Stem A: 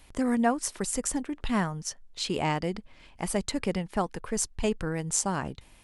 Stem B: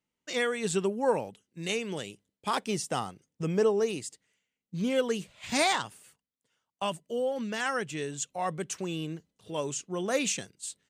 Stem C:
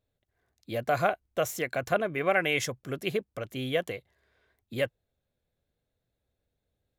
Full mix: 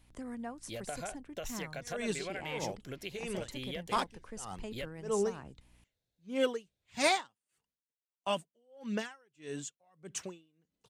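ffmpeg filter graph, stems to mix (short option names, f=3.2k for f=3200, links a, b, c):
-filter_complex "[0:a]acrossover=split=130[a][b];[b]acompressor=threshold=-37dB:ratio=1.5[c];[a][c]amix=inputs=2:normalize=0,aeval=exprs='val(0)+0.00251*(sin(2*PI*60*n/s)+sin(2*PI*2*60*n/s)/2+sin(2*PI*3*60*n/s)/3+sin(2*PI*4*60*n/s)/4+sin(2*PI*5*60*n/s)/5)':c=same,volume=-12dB[d];[1:a]aphaser=in_gain=1:out_gain=1:delay=4.4:decay=0.34:speed=0.93:type=triangular,highshelf=f=7.9k:g=-4,aeval=exprs='val(0)*pow(10,-38*(0.5-0.5*cos(2*PI*1.6*n/s))/20)':c=same,adelay=1450,volume=-1dB[e];[2:a]equalizer=f=5k:t=o:w=1.6:g=9.5,bandreject=f=1.2k:w=5.3,acompressor=threshold=-31dB:ratio=6,volume=-7.5dB[f];[d][e][f]amix=inputs=3:normalize=0"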